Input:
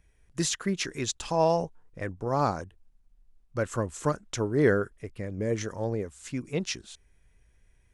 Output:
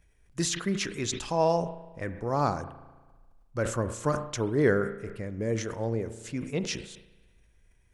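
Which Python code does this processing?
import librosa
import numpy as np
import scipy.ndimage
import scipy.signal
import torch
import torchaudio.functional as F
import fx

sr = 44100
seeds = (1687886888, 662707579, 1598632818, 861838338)

y = fx.rev_spring(x, sr, rt60_s=1.3, pass_ms=(35,), chirp_ms=75, drr_db=13.0)
y = fx.sustainer(y, sr, db_per_s=95.0)
y = y * librosa.db_to_amplitude(-1.0)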